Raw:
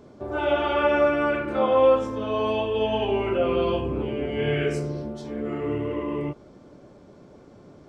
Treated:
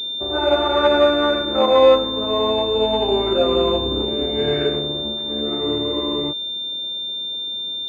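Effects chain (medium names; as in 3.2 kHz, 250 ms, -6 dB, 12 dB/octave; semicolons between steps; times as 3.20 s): peaking EQ 130 Hz -9.5 dB 0.79 oct; in parallel at -3 dB: crossover distortion -39 dBFS; on the sum: class-D stage that switches slowly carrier 3.6 kHz; trim +1.5 dB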